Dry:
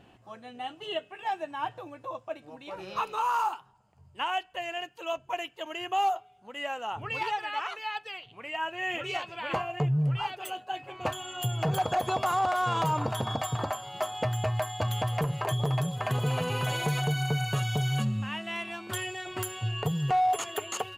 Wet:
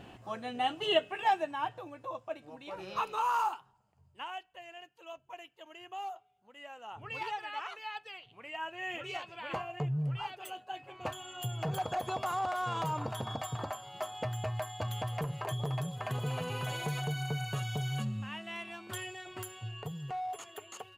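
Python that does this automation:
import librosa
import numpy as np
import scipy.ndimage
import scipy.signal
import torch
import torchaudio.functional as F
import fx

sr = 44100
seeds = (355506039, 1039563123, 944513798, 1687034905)

y = fx.gain(x, sr, db=fx.line((1.17, 6.0), (1.68, -2.5), (3.44, -2.5), (4.59, -14.0), (6.71, -14.0), (7.16, -6.5), (19.03, -6.5), (20.16, -13.0)))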